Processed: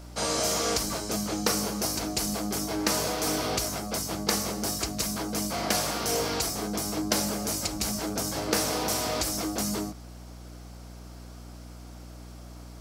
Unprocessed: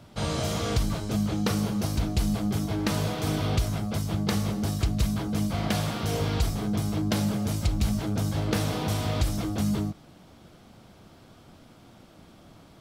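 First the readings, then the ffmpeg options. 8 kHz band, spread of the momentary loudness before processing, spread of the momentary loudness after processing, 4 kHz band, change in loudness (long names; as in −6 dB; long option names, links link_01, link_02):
+10.0 dB, 2 LU, 19 LU, +5.0 dB, 0.0 dB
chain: -filter_complex "[0:a]aexciter=amount=7.3:drive=7.8:freq=5100,acrossover=split=260 4400:gain=0.1 1 0.141[link_01][link_02][link_03];[link_01][link_02][link_03]amix=inputs=3:normalize=0,aeval=exprs='val(0)+0.00501*(sin(2*PI*60*n/s)+sin(2*PI*2*60*n/s)/2+sin(2*PI*3*60*n/s)/3+sin(2*PI*4*60*n/s)/4+sin(2*PI*5*60*n/s)/5)':channel_layout=same,volume=3dB"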